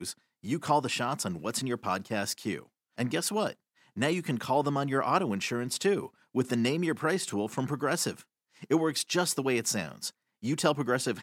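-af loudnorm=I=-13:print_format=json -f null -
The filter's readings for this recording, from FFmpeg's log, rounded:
"input_i" : "-30.1",
"input_tp" : "-10.2",
"input_lra" : "2.7",
"input_thresh" : "-40.4",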